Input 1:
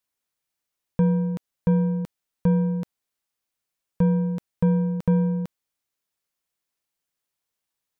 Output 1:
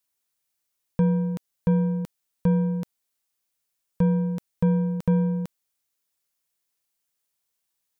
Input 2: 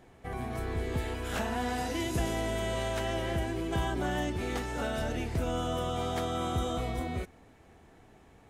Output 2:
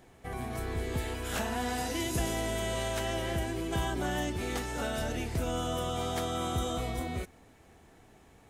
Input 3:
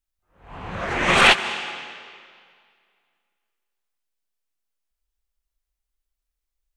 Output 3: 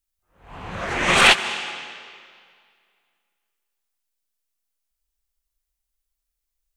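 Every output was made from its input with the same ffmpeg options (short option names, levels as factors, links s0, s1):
-af "highshelf=f=4500:g=7.5,volume=0.891"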